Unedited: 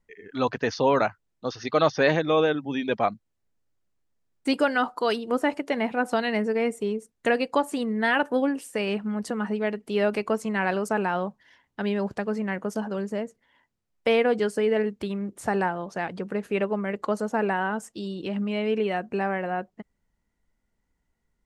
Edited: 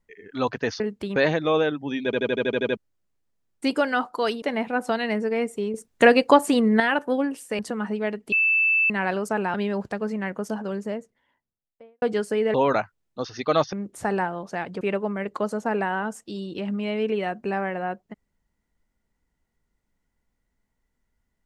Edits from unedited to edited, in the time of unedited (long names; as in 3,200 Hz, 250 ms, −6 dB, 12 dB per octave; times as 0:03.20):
0:00.80–0:01.99: swap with 0:14.80–0:15.16
0:02.88: stutter in place 0.08 s, 9 plays
0:05.25–0:05.66: remove
0:06.98–0:08.04: clip gain +8 dB
0:08.83–0:09.19: remove
0:09.92–0:10.50: beep over 2,640 Hz −17 dBFS
0:11.14–0:11.80: remove
0:13.03–0:14.28: fade out and dull
0:16.24–0:16.49: remove